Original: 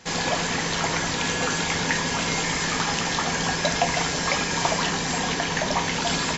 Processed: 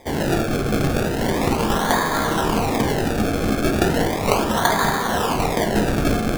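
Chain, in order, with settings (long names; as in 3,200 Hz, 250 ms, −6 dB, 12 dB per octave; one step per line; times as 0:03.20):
Chebyshev band-pass filter 170–4,000 Hz, order 5
parametric band 1,900 Hz +7 dB 2.7 octaves
sample-and-hold swept by an LFO 31×, swing 100% 0.36 Hz
convolution reverb RT60 0.35 s, pre-delay 7 ms, DRR 4 dB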